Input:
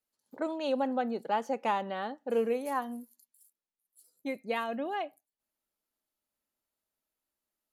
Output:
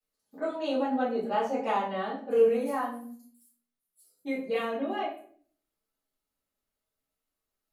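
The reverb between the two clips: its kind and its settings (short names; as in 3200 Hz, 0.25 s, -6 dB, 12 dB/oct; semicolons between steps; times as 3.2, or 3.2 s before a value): shoebox room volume 55 m³, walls mixed, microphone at 2.5 m; gain -10 dB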